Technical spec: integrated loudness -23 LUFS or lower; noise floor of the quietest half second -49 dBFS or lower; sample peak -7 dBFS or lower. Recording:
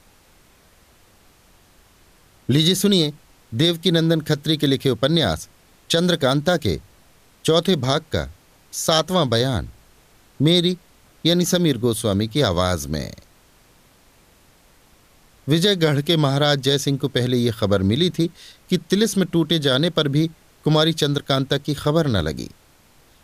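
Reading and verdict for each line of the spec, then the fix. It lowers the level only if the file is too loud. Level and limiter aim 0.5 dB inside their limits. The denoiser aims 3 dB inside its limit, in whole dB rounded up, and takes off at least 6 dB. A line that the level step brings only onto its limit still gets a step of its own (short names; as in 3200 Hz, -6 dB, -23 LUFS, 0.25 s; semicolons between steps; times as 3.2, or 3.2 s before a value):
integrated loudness -20.0 LUFS: fail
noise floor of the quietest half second -54 dBFS: OK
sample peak -5.0 dBFS: fail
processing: gain -3.5 dB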